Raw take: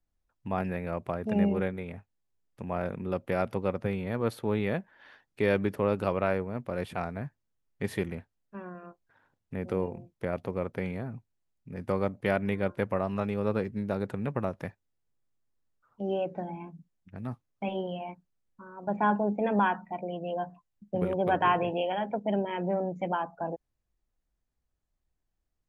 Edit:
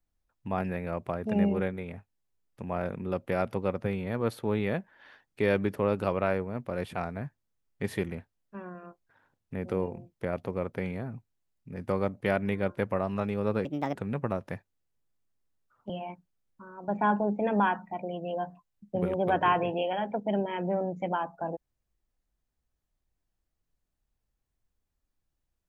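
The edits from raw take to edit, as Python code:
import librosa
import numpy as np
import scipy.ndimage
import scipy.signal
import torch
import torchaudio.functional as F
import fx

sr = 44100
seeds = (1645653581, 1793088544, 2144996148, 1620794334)

y = fx.edit(x, sr, fx.speed_span(start_s=13.65, length_s=0.42, speed=1.42),
    fx.cut(start_s=16.02, length_s=1.87), tone=tone)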